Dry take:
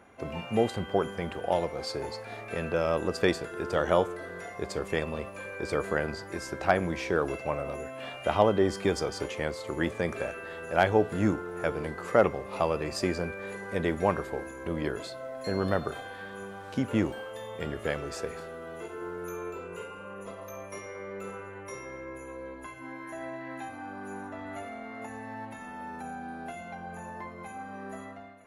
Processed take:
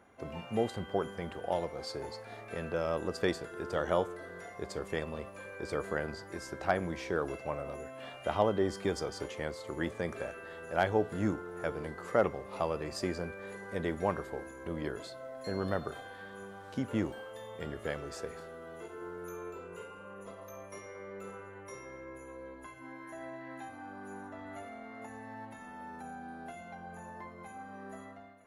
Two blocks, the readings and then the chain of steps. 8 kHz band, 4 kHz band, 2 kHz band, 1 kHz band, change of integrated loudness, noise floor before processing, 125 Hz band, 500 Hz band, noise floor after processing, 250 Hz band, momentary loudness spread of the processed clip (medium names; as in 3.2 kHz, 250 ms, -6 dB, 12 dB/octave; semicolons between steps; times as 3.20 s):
-5.5 dB, -6.0 dB, -6.0 dB, -5.5 dB, -5.5 dB, -44 dBFS, -5.5 dB, -5.5 dB, -49 dBFS, -5.5 dB, 15 LU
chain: peaking EQ 2.5 kHz -4.5 dB 0.25 oct; trim -5.5 dB